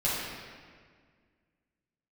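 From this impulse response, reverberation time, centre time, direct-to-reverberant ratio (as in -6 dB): 1.8 s, 0.117 s, -10.0 dB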